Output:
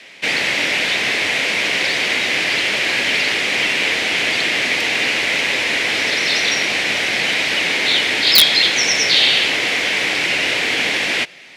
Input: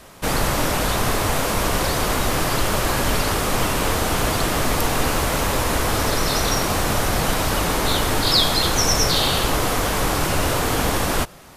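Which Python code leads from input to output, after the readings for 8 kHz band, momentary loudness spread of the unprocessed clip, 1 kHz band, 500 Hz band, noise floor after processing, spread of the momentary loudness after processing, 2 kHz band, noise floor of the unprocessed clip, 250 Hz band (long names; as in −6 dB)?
−1.5 dB, 4 LU, −6.0 dB, −3.0 dB, −20 dBFS, 5 LU, +10.5 dB, −23 dBFS, −5.0 dB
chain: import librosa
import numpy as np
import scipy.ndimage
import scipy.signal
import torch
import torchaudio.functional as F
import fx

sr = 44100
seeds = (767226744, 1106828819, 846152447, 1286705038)

y = fx.bandpass_edges(x, sr, low_hz=260.0, high_hz=4000.0)
y = fx.high_shelf_res(y, sr, hz=1600.0, db=10.0, q=3.0)
y = (np.mod(10.0 ** (-0.5 / 20.0) * y + 1.0, 2.0) - 1.0) / 10.0 ** (-0.5 / 20.0)
y = F.gain(torch.from_numpy(y), -1.5).numpy()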